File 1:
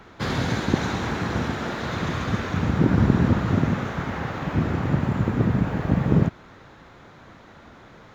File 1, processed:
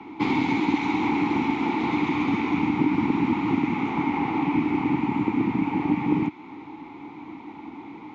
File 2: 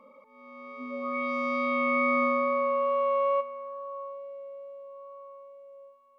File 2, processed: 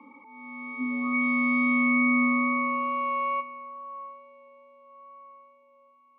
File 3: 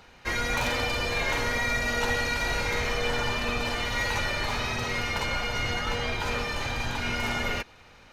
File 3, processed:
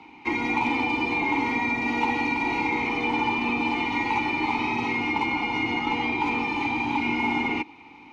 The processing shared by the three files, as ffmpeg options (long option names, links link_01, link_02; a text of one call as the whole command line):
ffmpeg -i in.wav -filter_complex "[0:a]asplit=3[link_01][link_02][link_03];[link_01]bandpass=frequency=300:width_type=q:width=8,volume=0dB[link_04];[link_02]bandpass=frequency=870:width_type=q:width=8,volume=-6dB[link_05];[link_03]bandpass=frequency=2240:width_type=q:width=8,volume=-9dB[link_06];[link_04][link_05][link_06]amix=inputs=3:normalize=0,apsyclip=19.5dB,acrossover=split=100|1100[link_07][link_08][link_09];[link_07]acompressor=threshold=-48dB:ratio=4[link_10];[link_08]acompressor=threshold=-22dB:ratio=4[link_11];[link_09]acompressor=threshold=-27dB:ratio=4[link_12];[link_10][link_11][link_12]amix=inputs=3:normalize=0" out.wav